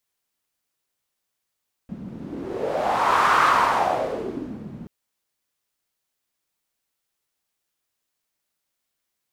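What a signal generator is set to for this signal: wind-like swept noise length 2.98 s, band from 190 Hz, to 1.2 kHz, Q 3.9, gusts 1, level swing 19 dB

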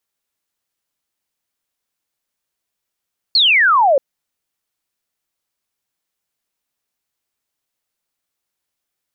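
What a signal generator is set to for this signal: laser zap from 4.5 kHz, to 520 Hz, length 0.63 s sine, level -9 dB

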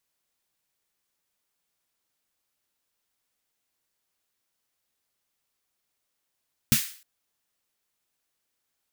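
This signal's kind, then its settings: snare drum length 0.31 s, tones 140 Hz, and 220 Hz, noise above 1.6 kHz, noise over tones -3 dB, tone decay 0.10 s, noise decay 0.45 s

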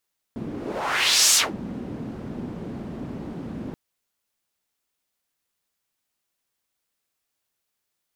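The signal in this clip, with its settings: whoosh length 3.38 s, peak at 0.99 s, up 0.89 s, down 0.19 s, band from 230 Hz, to 6.8 kHz, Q 1.9, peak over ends 17 dB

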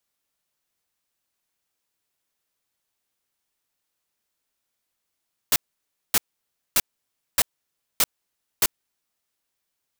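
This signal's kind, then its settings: noise bursts white, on 0.04 s, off 0.58 s, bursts 6, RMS -18 dBFS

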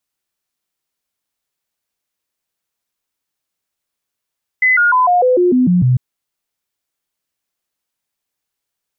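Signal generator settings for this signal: stepped sine 2.02 kHz down, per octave 2, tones 9, 0.15 s, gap 0.00 s -8.5 dBFS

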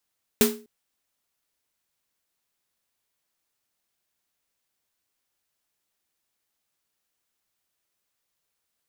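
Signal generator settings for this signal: snare drum length 0.25 s, tones 230 Hz, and 420 Hz, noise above 650 Hz, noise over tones -2 dB, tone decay 0.37 s, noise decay 0.28 s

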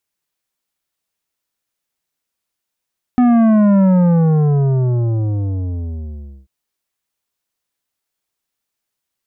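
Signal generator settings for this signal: sub drop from 250 Hz, over 3.29 s, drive 10.5 dB, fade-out 2.66 s, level -9.5 dB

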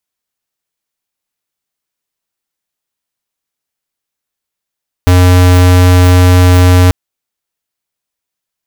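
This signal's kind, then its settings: tone square 90.2 Hz -5 dBFS 1.84 s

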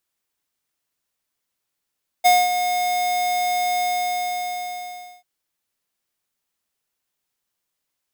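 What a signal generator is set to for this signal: ADSR square 720 Hz, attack 20 ms, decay 222 ms, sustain -9 dB, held 1.56 s, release 1430 ms -12.5 dBFS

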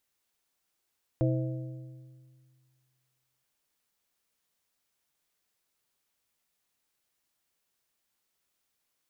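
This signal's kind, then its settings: metal hit plate, length 2.23 s, lowest mode 129 Hz, modes 4, decay 2.03 s, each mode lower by 3.5 dB, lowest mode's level -23.5 dB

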